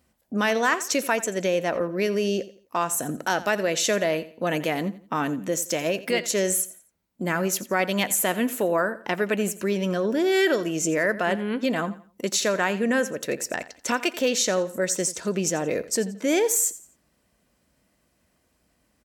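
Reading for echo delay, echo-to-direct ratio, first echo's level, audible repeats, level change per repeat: 86 ms, −16.0 dB, −16.5 dB, 2, −10.0 dB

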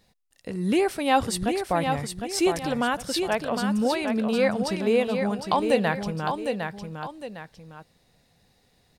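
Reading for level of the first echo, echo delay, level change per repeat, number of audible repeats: −6.0 dB, 757 ms, −8.5 dB, 2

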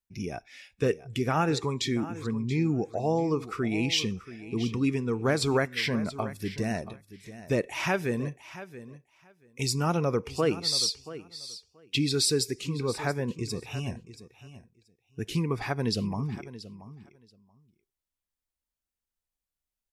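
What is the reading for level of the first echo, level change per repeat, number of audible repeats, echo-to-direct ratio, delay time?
−15.0 dB, −16.5 dB, 2, −15.0 dB, 680 ms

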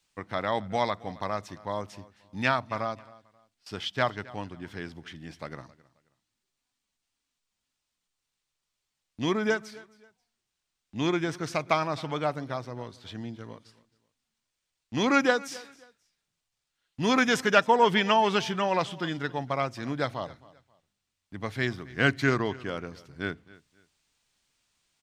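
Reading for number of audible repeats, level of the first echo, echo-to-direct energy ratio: 2, −21.0 dB, −20.5 dB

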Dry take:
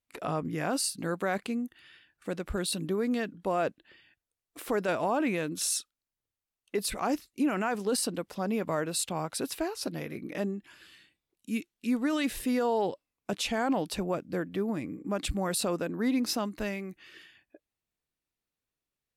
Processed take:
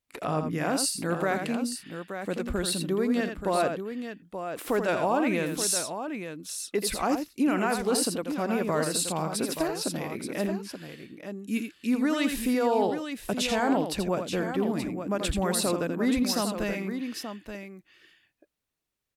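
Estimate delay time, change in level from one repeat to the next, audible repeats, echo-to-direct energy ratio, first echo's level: 83 ms, repeats not evenly spaced, 2, −4.5 dB, −7.0 dB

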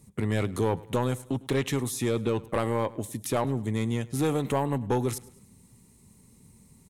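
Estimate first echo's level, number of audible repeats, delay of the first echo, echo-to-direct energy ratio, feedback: −21.0 dB, 3, 104 ms, −20.0 dB, 46%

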